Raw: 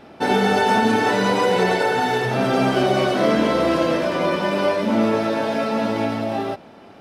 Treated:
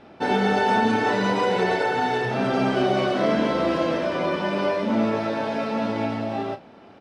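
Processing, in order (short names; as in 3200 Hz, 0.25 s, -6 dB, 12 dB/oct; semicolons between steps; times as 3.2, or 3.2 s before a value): air absorption 66 m; doubler 35 ms -11.5 dB; gain -3.5 dB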